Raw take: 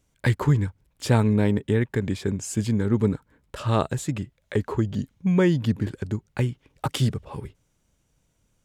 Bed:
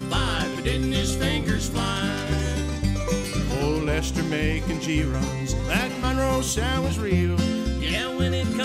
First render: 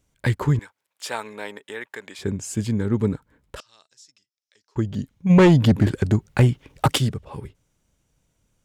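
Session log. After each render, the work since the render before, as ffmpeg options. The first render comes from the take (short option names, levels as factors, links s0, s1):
-filter_complex "[0:a]asettb=1/sr,asplit=3[s0][s1][s2];[s0]atrim=end=0.594[s3];[s1]atrim=start=0.59:end=2.19,asetpts=PTS-STARTPTS,afade=t=in:d=0.004:c=qsin,afade=t=out:st=1.596:d=0.004:c=qsin,highpass=780[s4];[s2]atrim=start=2.186[s5];[s3][s4]acrossfade=d=0.004:c1=hsin:c2=qsin[s6];[s6][s5]acrossfade=d=0.004:c1=qsin:c2=hsin,asettb=1/sr,asplit=3[s7][s8][s9];[s7]atrim=end=3.604[s10];[s8]atrim=start=3.6:end=4.76,asetpts=PTS-STARTPTS,afade=t=in:d=0.004:c=qsin,afade=t=out:st=1.156:d=0.004:c=qsin,bandpass=f=5400:t=q:w=8.6[s11];[s9]atrim=start=4.756[s12];[s10][s11]acrossfade=d=0.004:c1=hsin:c2=qsin[s13];[s13][s12]acrossfade=d=0.004:c1=qsin:c2=hsin,asplit=3[s14][s15][s16];[s14]afade=t=out:st=5.29:d=0.02[s17];[s15]aeval=exprs='0.355*sin(PI/2*2*val(0)/0.355)':c=same,afade=t=in:st=5.29:d=0.02,afade=t=out:st=6.97:d=0.02[s18];[s16]afade=t=in:st=6.97:d=0.02[s19];[s17][s18][s19]amix=inputs=3:normalize=0"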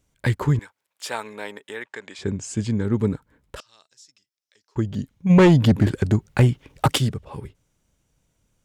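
-filter_complex "[0:a]asettb=1/sr,asplit=3[s0][s1][s2];[s0]atrim=end=1.834[s3];[s1]atrim=start=1.83:end=2.85,asetpts=PTS-STARTPTS,afade=t=in:d=0.004:c=qsin,afade=t=out:st=1.016:d=0.004:c=qsin,lowpass=f=8300:w=0.5412,lowpass=f=8300:w=1.3066[s4];[s2]atrim=start=2.846[s5];[s3][s4]acrossfade=d=0.004:c1=hsin:c2=qsin[s6];[s6][s5]acrossfade=d=0.004:c1=qsin:c2=hsin"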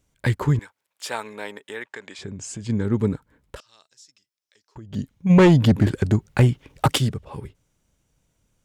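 -filter_complex "[0:a]asplit=3[s0][s1][s2];[s0]afade=t=out:st=1.95:d=0.02[s3];[s1]acompressor=threshold=0.0316:ratio=6:attack=3.2:release=140:knee=1:detection=peak,afade=t=in:st=1.95:d=0.02,afade=t=out:st=2.68:d=0.02[s4];[s2]afade=t=in:st=2.68:d=0.02[s5];[s3][s4][s5]amix=inputs=3:normalize=0,asettb=1/sr,asplit=3[s6][s7][s8];[s6]atrim=end=3.564[s9];[s7]atrim=start=3.56:end=4.93,asetpts=PTS-STARTPTS,afade=t=in:d=0.004:c=qsin,afade=t=out:st=1.366:d=0.004:c=qsin,acompressor=threshold=0.01:ratio=4:attack=3.2:release=140:knee=1:detection=peak[s10];[s8]atrim=start=4.926[s11];[s9][s10]acrossfade=d=0.004:c1=hsin:c2=qsin[s12];[s12][s11]acrossfade=d=0.004:c1=qsin:c2=hsin"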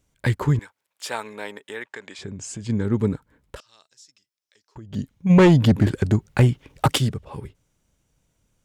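-af anull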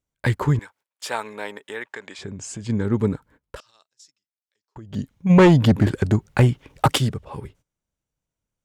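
-af "equalizer=f=940:t=o:w=2.1:g=3,agate=range=0.141:threshold=0.00282:ratio=16:detection=peak"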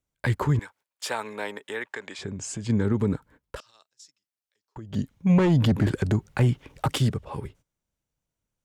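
-filter_complex "[0:a]alimiter=limit=0.2:level=0:latency=1:release=57,acrossover=split=310[s0][s1];[s1]acompressor=threshold=0.0501:ratio=2[s2];[s0][s2]amix=inputs=2:normalize=0"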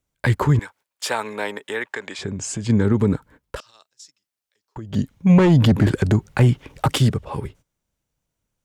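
-af "volume=2"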